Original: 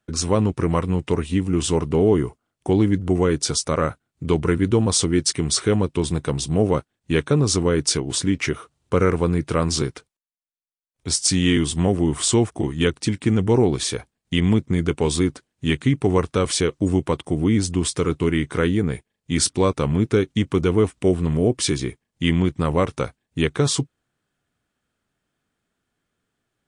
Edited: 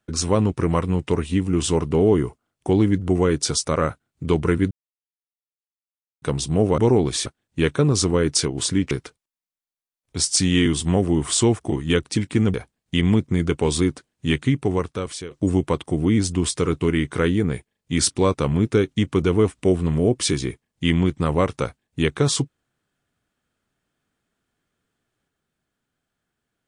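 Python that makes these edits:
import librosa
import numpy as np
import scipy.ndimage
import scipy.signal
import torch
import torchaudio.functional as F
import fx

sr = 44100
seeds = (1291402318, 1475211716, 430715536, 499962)

y = fx.edit(x, sr, fx.silence(start_s=4.71, length_s=1.51),
    fx.cut(start_s=8.43, length_s=1.39),
    fx.move(start_s=13.45, length_s=0.48, to_s=6.78),
    fx.fade_out_to(start_s=15.79, length_s=0.91, floor_db=-16.5), tone=tone)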